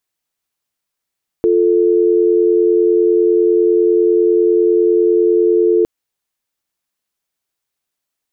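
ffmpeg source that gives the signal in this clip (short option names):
-f lavfi -i "aevalsrc='0.251*(sin(2*PI*350*t)+sin(2*PI*440*t))':d=4.41:s=44100"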